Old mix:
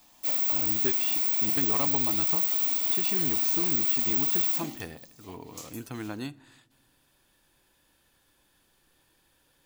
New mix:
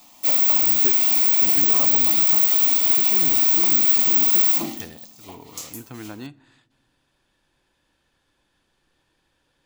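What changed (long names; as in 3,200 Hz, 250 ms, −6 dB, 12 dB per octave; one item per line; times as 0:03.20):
speech: add high-frequency loss of the air 65 metres
background +9.0 dB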